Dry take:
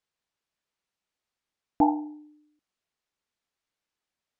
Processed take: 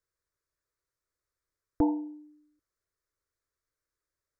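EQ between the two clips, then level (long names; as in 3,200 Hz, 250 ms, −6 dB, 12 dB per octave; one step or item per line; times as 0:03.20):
low-shelf EQ 200 Hz +10 dB
phaser with its sweep stopped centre 790 Hz, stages 6
0.0 dB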